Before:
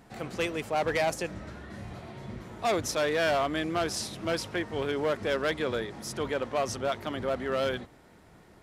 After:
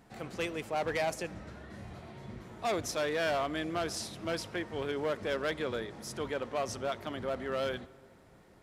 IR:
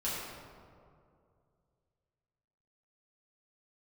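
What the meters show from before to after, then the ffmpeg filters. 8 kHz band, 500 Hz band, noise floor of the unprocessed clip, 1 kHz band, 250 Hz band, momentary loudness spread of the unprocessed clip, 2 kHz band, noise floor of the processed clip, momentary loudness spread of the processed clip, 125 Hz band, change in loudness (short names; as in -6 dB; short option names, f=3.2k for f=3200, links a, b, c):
-4.5 dB, -4.5 dB, -56 dBFS, -4.5 dB, -4.5 dB, 15 LU, -4.5 dB, -59 dBFS, 15 LU, -4.5 dB, -4.5 dB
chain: -filter_complex "[0:a]asplit=2[a][b];[1:a]atrim=start_sample=2205[c];[b][c]afir=irnorm=-1:irlink=0,volume=-24dB[d];[a][d]amix=inputs=2:normalize=0,volume=-5dB"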